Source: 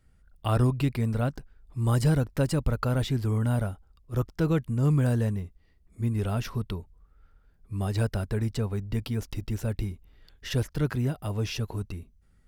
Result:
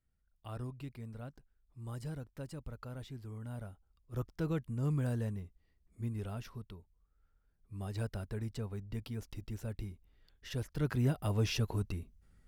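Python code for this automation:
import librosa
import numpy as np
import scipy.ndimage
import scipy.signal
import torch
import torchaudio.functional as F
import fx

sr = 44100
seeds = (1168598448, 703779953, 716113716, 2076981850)

y = fx.gain(x, sr, db=fx.line((3.39, -19.0), (4.22, -10.0), (6.02, -10.0), (6.76, -17.0), (8.03, -11.0), (10.59, -11.0), (11.1, -2.0)))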